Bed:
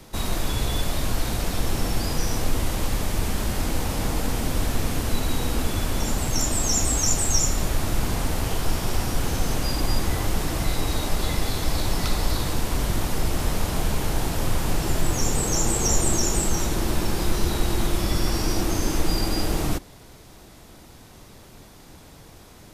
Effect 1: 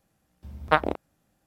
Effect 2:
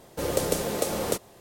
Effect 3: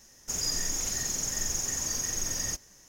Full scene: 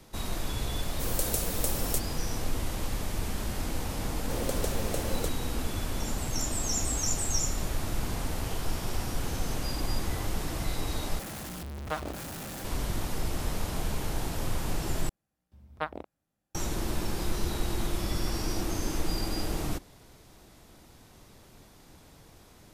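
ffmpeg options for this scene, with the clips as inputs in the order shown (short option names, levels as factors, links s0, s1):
-filter_complex "[2:a]asplit=2[s0][s1];[1:a]asplit=2[s2][s3];[0:a]volume=0.422[s4];[s0]aemphasis=mode=production:type=75kf[s5];[s2]aeval=exprs='val(0)+0.5*0.133*sgn(val(0))':c=same[s6];[s4]asplit=3[s7][s8][s9];[s7]atrim=end=11.194[s10];[s6]atrim=end=1.46,asetpts=PTS-STARTPTS,volume=0.168[s11];[s8]atrim=start=12.646:end=15.094[s12];[s3]atrim=end=1.46,asetpts=PTS-STARTPTS,volume=0.224[s13];[s9]atrim=start=16.546[s14];[s5]atrim=end=1.4,asetpts=PTS-STARTPTS,volume=0.251,afade=t=in:d=0.004:c=hsin,afade=t=out:st=1.396:d=0.004:c=hsin,adelay=820[s15];[s1]atrim=end=1.4,asetpts=PTS-STARTPTS,volume=0.422,afade=t=in:d=0.004:c=hsin,afade=t=out:st=1.396:d=0.004:c=hsin,adelay=4120[s16];[s10][s11]acrossfade=d=0.004:c1=hsin:c2=hsin[s17];[s17][s12]acrossfade=d=0.004:c1=hsin:c2=hsin[s18];[s18][s13]acrossfade=d=0.004:c1=hsin:c2=hsin[s19];[s19][s14]acrossfade=d=0.004:c1=hsin:c2=hsin[s20];[s20][s15][s16]amix=inputs=3:normalize=0"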